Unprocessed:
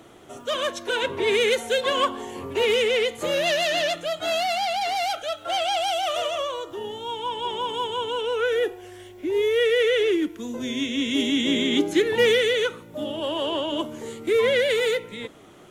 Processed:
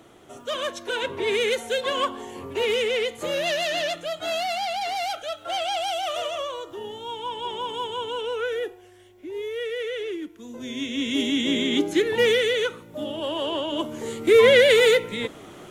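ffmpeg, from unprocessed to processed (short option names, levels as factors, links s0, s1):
-af "volume=4.47,afade=t=out:st=8.26:d=0.66:silence=0.446684,afade=t=in:st=10.37:d=0.72:silence=0.375837,afade=t=in:st=13.73:d=0.65:silence=0.446684"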